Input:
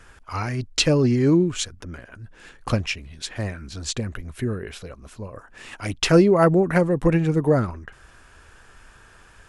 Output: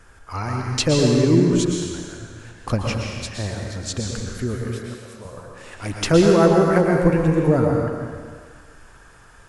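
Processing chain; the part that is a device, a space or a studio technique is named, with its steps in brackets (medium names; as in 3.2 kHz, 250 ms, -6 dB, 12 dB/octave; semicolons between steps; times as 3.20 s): 4.55–5.25 s: Bessel high-pass 570 Hz; stairwell (reverberation RT60 1.8 s, pre-delay 108 ms, DRR -0.5 dB); peaking EQ 2.8 kHz -5 dB 1.2 oct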